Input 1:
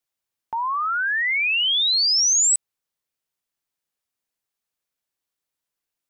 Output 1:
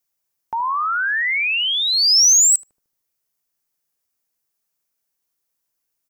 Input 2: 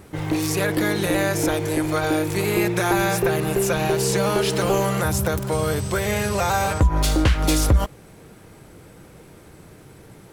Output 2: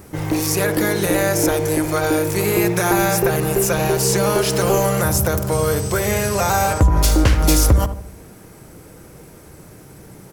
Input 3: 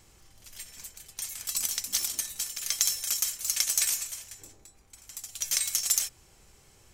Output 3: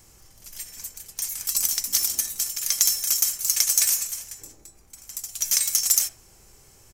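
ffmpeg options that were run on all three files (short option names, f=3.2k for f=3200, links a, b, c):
-filter_complex "[0:a]highshelf=f=3.9k:g=-6,aexciter=amount=1.9:drive=8.1:freq=5k,asplit=2[a][b];[b]adelay=75,lowpass=f=800:p=1,volume=-8dB,asplit=2[c][d];[d]adelay=75,lowpass=f=800:p=1,volume=0.53,asplit=2[e][f];[f]adelay=75,lowpass=f=800:p=1,volume=0.53,asplit=2[g][h];[h]adelay=75,lowpass=f=800:p=1,volume=0.53,asplit=2[i][j];[j]adelay=75,lowpass=f=800:p=1,volume=0.53,asplit=2[k][l];[l]adelay=75,lowpass=f=800:p=1,volume=0.53[m];[c][e][g][i][k][m]amix=inputs=6:normalize=0[n];[a][n]amix=inputs=2:normalize=0,volume=3dB"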